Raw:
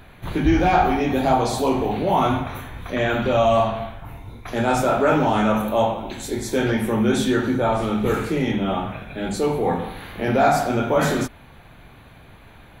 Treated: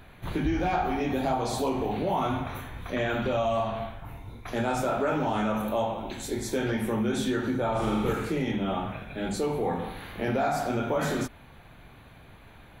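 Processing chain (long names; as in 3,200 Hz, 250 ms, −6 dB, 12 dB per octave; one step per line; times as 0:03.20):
downward compressor 3 to 1, threshold −20 dBFS, peak gain reduction 6.5 dB
0:07.71–0:08.13: flutter between parallel walls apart 7.1 metres, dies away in 0.88 s
level −4.5 dB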